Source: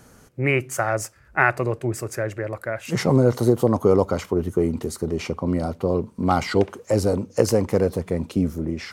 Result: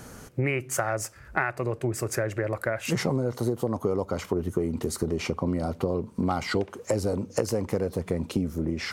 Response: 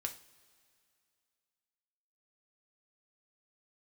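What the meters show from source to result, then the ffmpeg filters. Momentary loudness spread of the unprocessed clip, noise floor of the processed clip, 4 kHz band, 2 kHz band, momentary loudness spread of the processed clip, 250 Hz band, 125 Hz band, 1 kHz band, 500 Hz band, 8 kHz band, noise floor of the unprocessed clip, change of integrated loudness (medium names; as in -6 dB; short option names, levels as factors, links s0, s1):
9 LU, -49 dBFS, -2.0 dB, -6.0 dB, 2 LU, -5.5 dB, -5.5 dB, -6.5 dB, -6.5 dB, -1.0 dB, -52 dBFS, -6.0 dB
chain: -af "acompressor=threshold=0.0316:ratio=6,volume=2"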